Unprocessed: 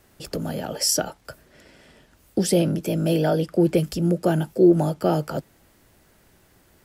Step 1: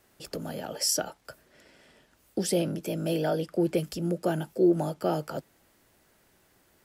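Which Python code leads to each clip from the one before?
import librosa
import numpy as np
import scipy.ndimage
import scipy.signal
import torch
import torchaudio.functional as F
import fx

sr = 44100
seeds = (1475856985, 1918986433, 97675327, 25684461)

y = fx.low_shelf(x, sr, hz=180.0, db=-8.0)
y = y * librosa.db_to_amplitude(-5.0)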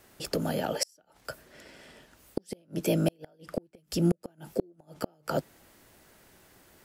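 y = fx.gate_flip(x, sr, shuts_db=-19.0, range_db=-40)
y = y * librosa.db_to_amplitude(6.0)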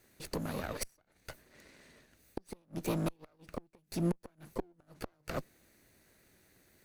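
y = fx.lower_of_two(x, sr, delay_ms=0.48)
y = y * librosa.db_to_amplitude(-6.5)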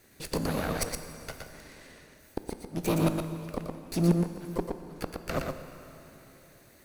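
y = x + 10.0 ** (-4.5 / 20.0) * np.pad(x, (int(118 * sr / 1000.0), 0))[:len(x)]
y = fx.rev_plate(y, sr, seeds[0], rt60_s=3.5, hf_ratio=0.8, predelay_ms=0, drr_db=9.0)
y = y * librosa.db_to_amplitude(6.0)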